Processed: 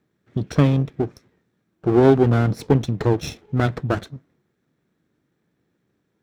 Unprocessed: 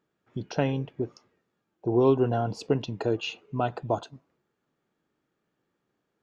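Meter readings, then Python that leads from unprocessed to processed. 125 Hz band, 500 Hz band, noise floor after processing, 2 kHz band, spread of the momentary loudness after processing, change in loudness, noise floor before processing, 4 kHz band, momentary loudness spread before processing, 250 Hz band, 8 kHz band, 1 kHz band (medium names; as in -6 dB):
+11.5 dB, +6.0 dB, -72 dBFS, +8.0 dB, 13 LU, +8.0 dB, -80 dBFS, +2.5 dB, 13 LU, +9.0 dB, no reading, +4.5 dB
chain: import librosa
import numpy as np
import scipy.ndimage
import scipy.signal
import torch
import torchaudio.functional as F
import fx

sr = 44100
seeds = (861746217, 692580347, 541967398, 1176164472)

y = fx.lower_of_two(x, sr, delay_ms=0.53)
y = scipy.signal.sosfilt(scipy.signal.butter(2, 64.0, 'highpass', fs=sr, output='sos'), y)
y = fx.low_shelf(y, sr, hz=320.0, db=9.0)
y = F.gain(torch.from_numpy(y), 4.5).numpy()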